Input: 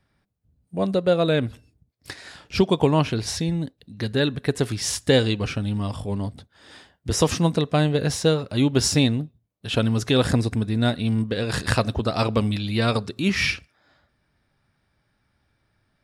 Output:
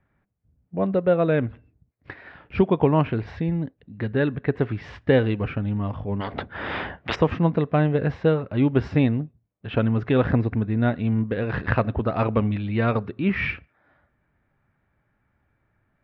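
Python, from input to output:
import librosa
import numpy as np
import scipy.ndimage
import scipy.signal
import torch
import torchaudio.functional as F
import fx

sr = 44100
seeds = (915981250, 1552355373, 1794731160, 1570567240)

y = scipy.signal.sosfilt(scipy.signal.butter(4, 2300.0, 'lowpass', fs=sr, output='sos'), x)
y = fx.spectral_comp(y, sr, ratio=10.0, at=(6.2, 7.14), fade=0.02)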